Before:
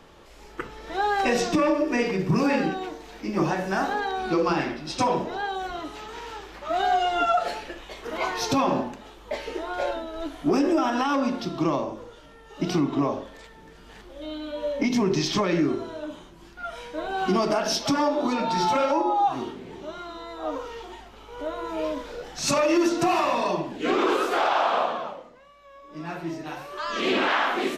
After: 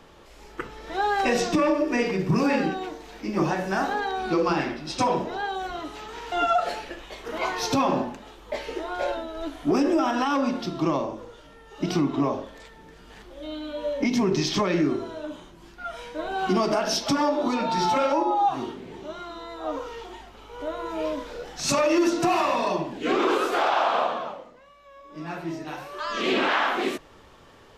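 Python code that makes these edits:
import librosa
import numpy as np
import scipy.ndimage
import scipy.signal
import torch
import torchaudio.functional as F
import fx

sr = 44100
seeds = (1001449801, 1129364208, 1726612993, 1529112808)

y = fx.edit(x, sr, fx.cut(start_s=6.32, length_s=0.79), tone=tone)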